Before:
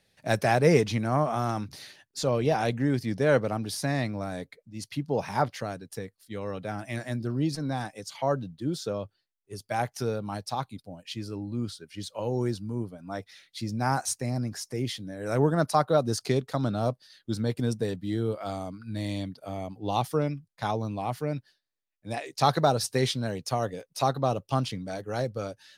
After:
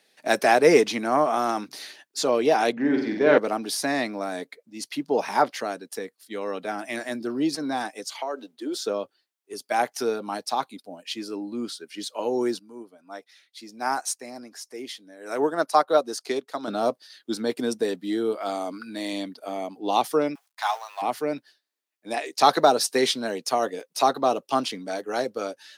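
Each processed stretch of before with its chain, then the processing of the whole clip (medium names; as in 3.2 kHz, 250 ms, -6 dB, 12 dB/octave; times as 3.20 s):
2.72–3.38 s: self-modulated delay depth 0.051 ms + distance through air 200 m + flutter echo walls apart 8.1 m, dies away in 0.71 s
8.05–8.80 s: high-pass 300 Hz 24 dB/octave + compression, threshold -30 dBFS
12.59–16.68 s: bass shelf 220 Hz -9 dB + upward expansion, over -39 dBFS
18.55–19.13 s: peaking EQ 140 Hz -8.5 dB 0.87 oct + level flattener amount 50%
20.35–21.02 s: companding laws mixed up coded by mu + steep high-pass 740 Hz
whole clip: high-pass 260 Hz 24 dB/octave; band-stop 540 Hz, Q 12; trim +6 dB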